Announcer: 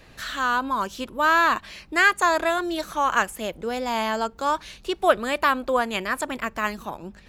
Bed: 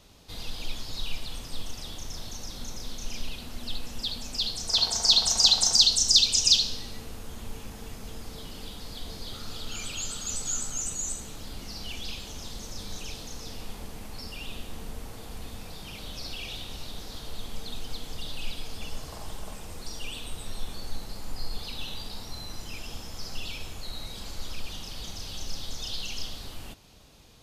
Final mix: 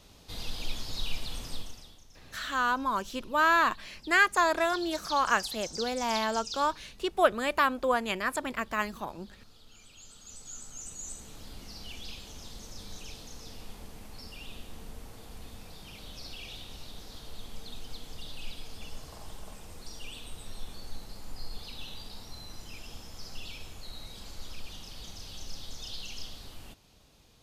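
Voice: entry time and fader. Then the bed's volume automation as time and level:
2.15 s, −4.5 dB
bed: 0:01.51 −0.5 dB
0:02.06 −19.5 dB
0:09.87 −19.5 dB
0:11.37 −6 dB

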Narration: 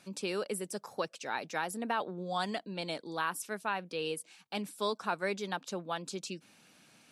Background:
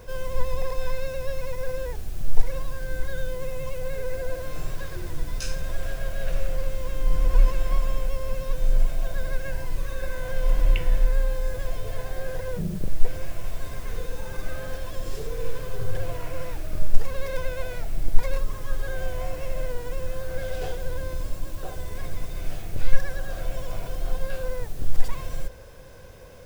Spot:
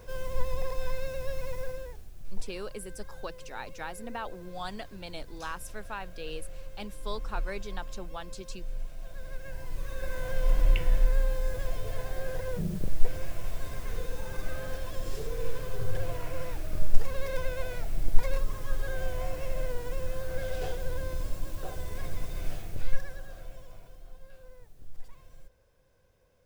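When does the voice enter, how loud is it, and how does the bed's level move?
2.25 s, −4.5 dB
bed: 0:01.58 −4.5 dB
0:02.13 −16 dB
0:08.92 −16 dB
0:10.18 −3 dB
0:22.48 −3 dB
0:24.10 −21.5 dB

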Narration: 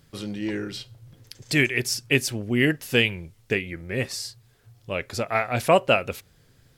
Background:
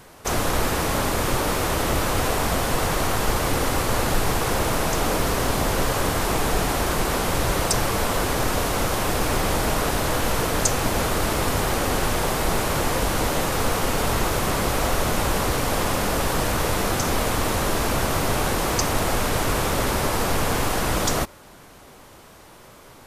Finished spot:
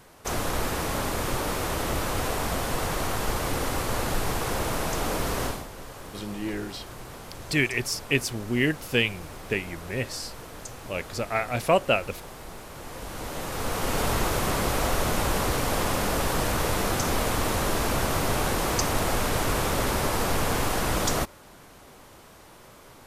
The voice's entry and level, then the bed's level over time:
6.00 s, −3.0 dB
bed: 0:05.46 −5.5 dB
0:05.68 −19 dB
0:12.72 −19 dB
0:13.98 −3 dB

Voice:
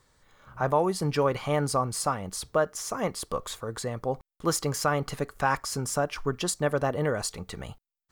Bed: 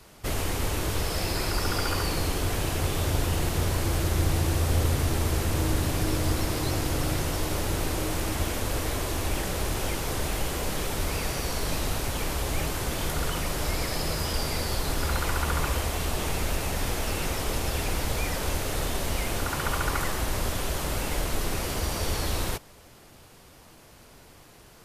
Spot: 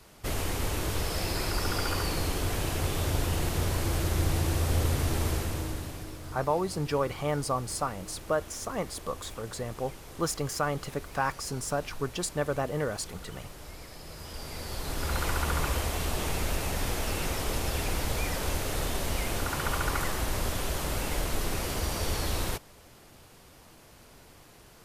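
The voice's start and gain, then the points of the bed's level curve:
5.75 s, −3.5 dB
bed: 0:05.29 −2.5 dB
0:06.20 −16.5 dB
0:14.01 −16.5 dB
0:15.22 −2 dB

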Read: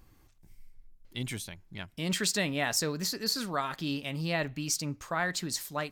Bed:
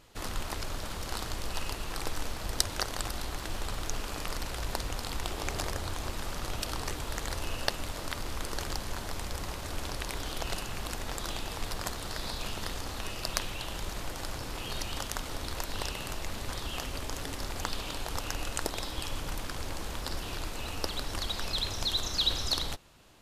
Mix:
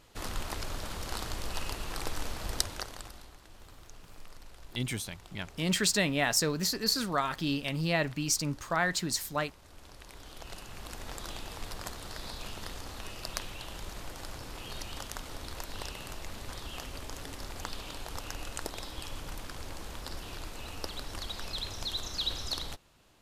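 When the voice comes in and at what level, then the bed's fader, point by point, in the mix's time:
3.60 s, +2.0 dB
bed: 0:02.54 −1 dB
0:03.40 −18 dB
0:09.64 −18 dB
0:11.08 −5 dB

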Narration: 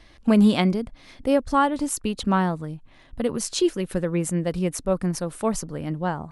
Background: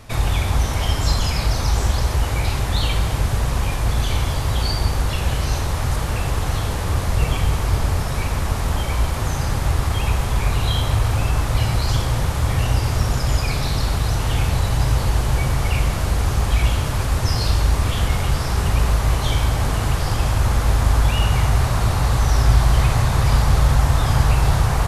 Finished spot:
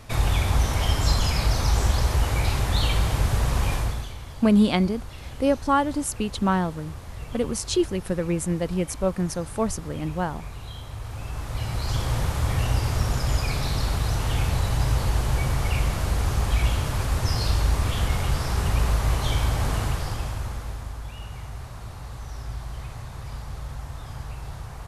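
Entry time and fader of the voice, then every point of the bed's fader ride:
4.15 s, −1.0 dB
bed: 0:03.77 −2.5 dB
0:04.16 −18 dB
0:10.91 −18 dB
0:12.12 −4.5 dB
0:19.78 −4.5 dB
0:20.97 −19.5 dB

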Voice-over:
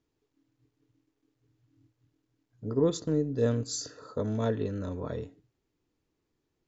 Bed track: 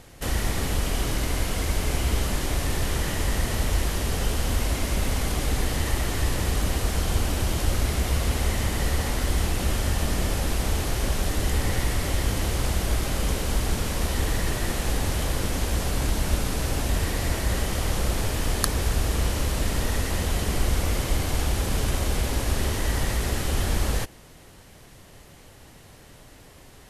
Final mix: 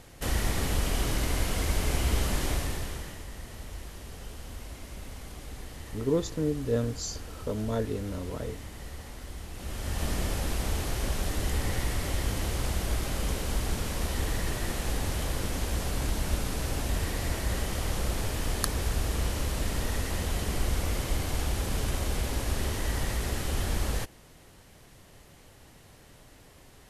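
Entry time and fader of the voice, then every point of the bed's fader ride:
3.30 s, −1.0 dB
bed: 0:02.50 −2.5 dB
0:03.26 −17 dB
0:09.47 −17 dB
0:10.05 −5 dB

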